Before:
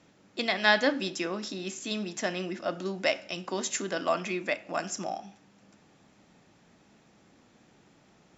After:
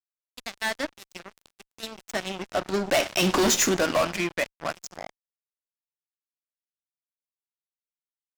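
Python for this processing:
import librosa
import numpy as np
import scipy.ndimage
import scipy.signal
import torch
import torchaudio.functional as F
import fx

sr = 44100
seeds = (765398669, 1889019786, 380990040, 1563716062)

y = fx.doppler_pass(x, sr, speed_mps=14, closest_m=1.8, pass_at_s=3.35)
y = fx.fuzz(y, sr, gain_db=44.0, gate_db=-52.0)
y = F.gain(torch.from_numpy(y), -5.0).numpy()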